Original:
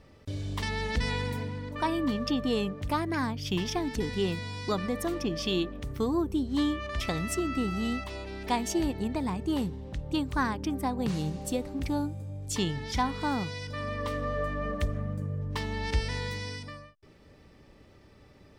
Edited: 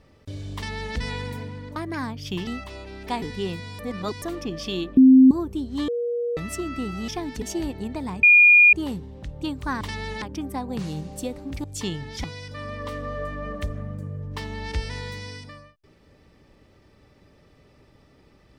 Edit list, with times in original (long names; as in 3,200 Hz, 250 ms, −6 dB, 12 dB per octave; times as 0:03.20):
0:00.55–0:00.96: duplicate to 0:10.51
0:01.76–0:02.96: remove
0:03.67–0:04.01: swap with 0:07.87–0:08.62
0:04.58–0:05.01: reverse
0:05.76–0:06.10: beep over 261 Hz −8 dBFS
0:06.67–0:07.16: beep over 477 Hz −23 dBFS
0:09.43: insert tone 2,430 Hz −9.5 dBFS 0.50 s
0:11.93–0:12.39: remove
0:12.99–0:13.43: remove